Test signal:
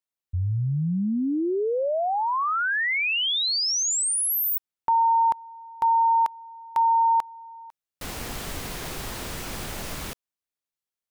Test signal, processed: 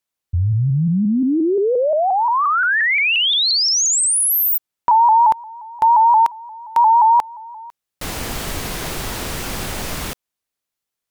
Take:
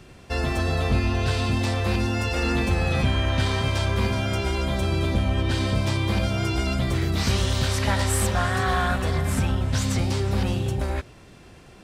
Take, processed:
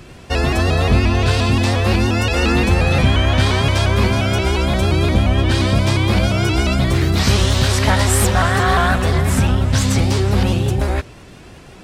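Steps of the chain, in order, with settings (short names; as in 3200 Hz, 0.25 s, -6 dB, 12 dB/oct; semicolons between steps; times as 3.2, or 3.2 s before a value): shaped vibrato saw up 5.7 Hz, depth 100 cents; gain +8 dB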